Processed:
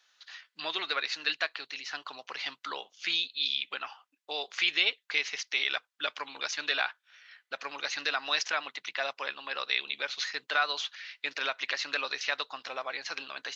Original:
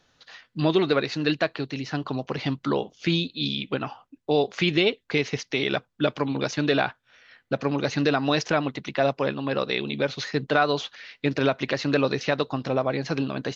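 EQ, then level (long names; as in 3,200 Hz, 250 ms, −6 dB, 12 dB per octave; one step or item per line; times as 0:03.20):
high-pass filter 1,400 Hz 12 dB per octave
0.0 dB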